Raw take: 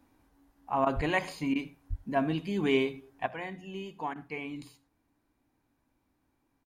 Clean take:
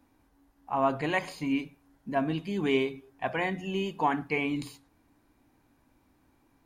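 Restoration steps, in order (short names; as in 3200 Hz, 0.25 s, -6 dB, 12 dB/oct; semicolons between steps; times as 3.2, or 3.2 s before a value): de-plosive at 0.95/1.89; interpolate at 0.85/1.54/4.14, 14 ms; inverse comb 79 ms -22 dB; gain 0 dB, from 3.26 s +9 dB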